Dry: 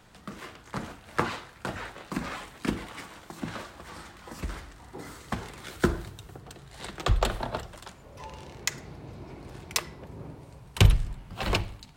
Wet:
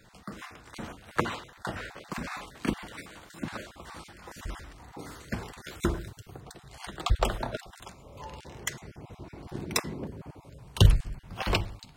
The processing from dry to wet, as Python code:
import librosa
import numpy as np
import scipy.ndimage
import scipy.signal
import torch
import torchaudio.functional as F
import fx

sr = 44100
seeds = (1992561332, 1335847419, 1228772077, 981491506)

y = fx.spec_dropout(x, sr, seeds[0], share_pct=23)
y = fx.peak_eq(y, sr, hz=250.0, db=13.0, octaves=1.9, at=(9.47, 10.1))